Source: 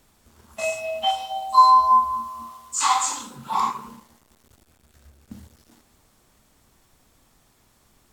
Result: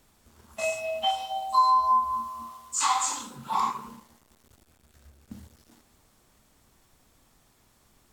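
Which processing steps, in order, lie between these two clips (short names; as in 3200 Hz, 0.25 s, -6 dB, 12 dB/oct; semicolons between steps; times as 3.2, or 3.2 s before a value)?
compressor 2:1, threshold -19 dBFS, peak gain reduction 6 dB; gain -2.5 dB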